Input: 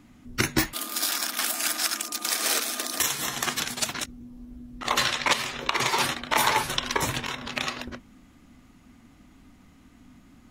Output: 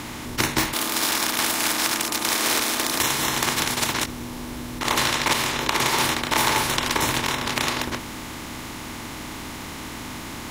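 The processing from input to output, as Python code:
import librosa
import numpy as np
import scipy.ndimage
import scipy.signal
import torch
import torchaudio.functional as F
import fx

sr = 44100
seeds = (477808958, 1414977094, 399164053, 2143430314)

y = fx.bin_compress(x, sr, power=0.4)
y = y * 10.0 ** (-3.0 / 20.0)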